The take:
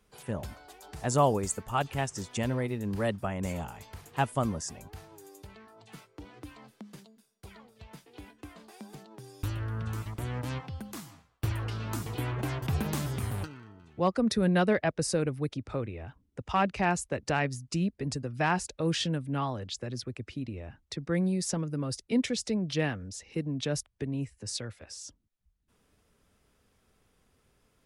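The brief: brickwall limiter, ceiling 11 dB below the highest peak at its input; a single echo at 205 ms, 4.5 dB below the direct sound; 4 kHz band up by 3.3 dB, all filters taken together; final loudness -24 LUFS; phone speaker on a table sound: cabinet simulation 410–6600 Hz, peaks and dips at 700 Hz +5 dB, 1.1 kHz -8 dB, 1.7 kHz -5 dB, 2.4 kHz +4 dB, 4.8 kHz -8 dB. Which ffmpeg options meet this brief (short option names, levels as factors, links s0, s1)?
-af "equalizer=f=4000:t=o:g=7,alimiter=limit=0.0631:level=0:latency=1,highpass=f=410:w=0.5412,highpass=f=410:w=1.3066,equalizer=f=700:t=q:w=4:g=5,equalizer=f=1100:t=q:w=4:g=-8,equalizer=f=1700:t=q:w=4:g=-5,equalizer=f=2400:t=q:w=4:g=4,equalizer=f=4800:t=q:w=4:g=-8,lowpass=f=6600:w=0.5412,lowpass=f=6600:w=1.3066,aecho=1:1:205:0.596,volume=5.31"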